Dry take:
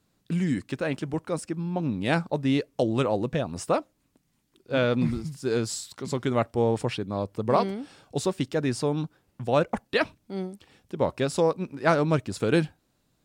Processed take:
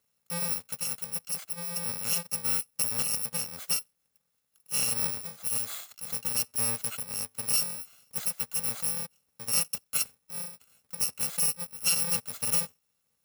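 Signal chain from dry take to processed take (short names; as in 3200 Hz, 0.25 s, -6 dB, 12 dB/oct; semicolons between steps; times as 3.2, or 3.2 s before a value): FFT order left unsorted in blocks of 128 samples; HPF 340 Hz 6 dB/oct; gain -4.5 dB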